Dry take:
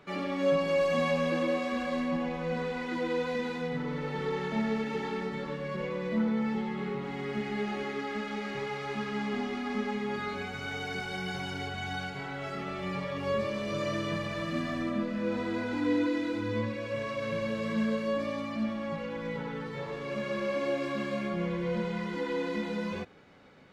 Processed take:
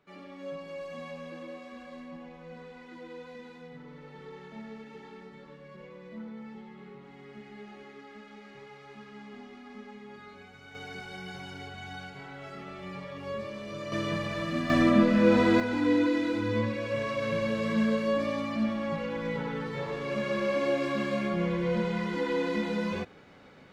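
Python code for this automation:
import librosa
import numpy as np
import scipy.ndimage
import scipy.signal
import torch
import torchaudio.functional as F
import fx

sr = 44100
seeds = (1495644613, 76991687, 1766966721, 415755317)

y = fx.gain(x, sr, db=fx.steps((0.0, -13.5), (10.75, -6.0), (13.92, 1.5), (14.7, 10.5), (15.6, 3.0)))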